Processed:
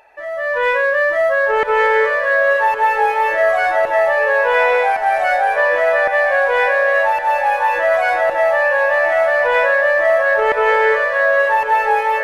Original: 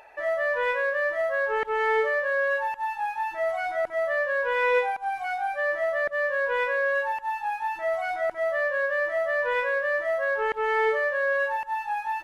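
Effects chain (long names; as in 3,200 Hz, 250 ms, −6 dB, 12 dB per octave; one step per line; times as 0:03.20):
brickwall limiter −21 dBFS, peak gain reduction 7 dB
automatic gain control gain up to 12.5 dB
on a send: feedback delay with all-pass diffusion 1,261 ms, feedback 44%, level −7 dB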